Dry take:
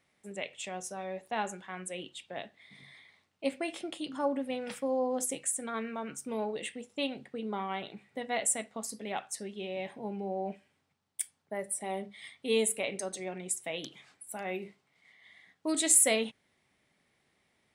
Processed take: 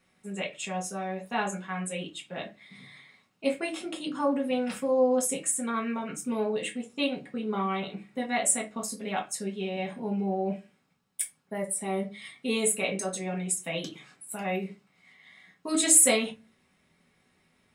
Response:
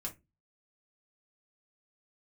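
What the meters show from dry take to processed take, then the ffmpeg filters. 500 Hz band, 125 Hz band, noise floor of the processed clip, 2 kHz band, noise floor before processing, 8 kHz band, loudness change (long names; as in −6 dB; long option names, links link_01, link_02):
+4.5 dB, +10.0 dB, −69 dBFS, +4.5 dB, −75 dBFS, +4.5 dB, +5.0 dB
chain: -filter_complex "[1:a]atrim=start_sample=2205[link_01];[0:a][link_01]afir=irnorm=-1:irlink=0,volume=6dB"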